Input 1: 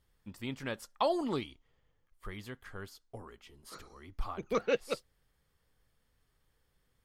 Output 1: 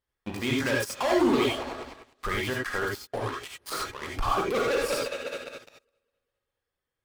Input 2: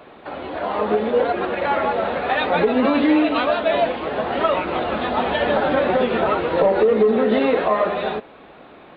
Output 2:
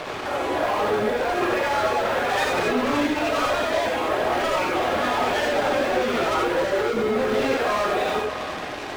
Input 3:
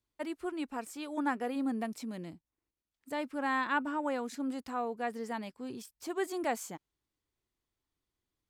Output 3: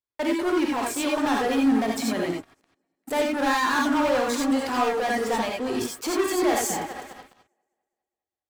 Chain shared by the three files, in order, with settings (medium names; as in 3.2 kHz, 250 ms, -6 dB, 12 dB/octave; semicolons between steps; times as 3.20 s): backward echo that repeats 102 ms, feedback 74%, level -13.5 dB; reverb removal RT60 0.9 s; tone controls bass -10 dB, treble -5 dB; waveshaping leveller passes 5; compressor with a negative ratio -23 dBFS, ratio -1; peak limiter -23 dBFS; gated-style reverb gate 110 ms rising, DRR -1.5 dB